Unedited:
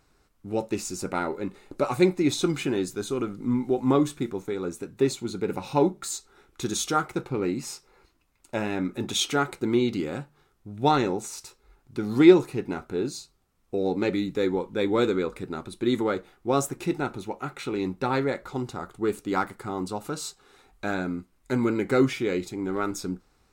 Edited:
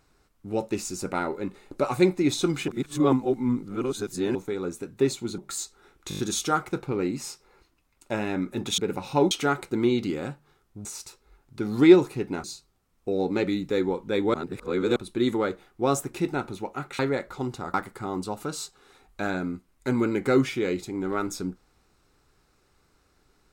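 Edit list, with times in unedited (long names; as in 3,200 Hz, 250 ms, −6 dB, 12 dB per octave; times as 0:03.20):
0:02.68–0:04.35: reverse
0:05.38–0:05.91: move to 0:09.21
0:06.62: stutter 0.02 s, 6 plays
0:10.75–0:11.23: remove
0:12.82–0:13.10: remove
0:15.00–0:15.62: reverse
0:17.65–0:18.14: remove
0:18.89–0:19.38: remove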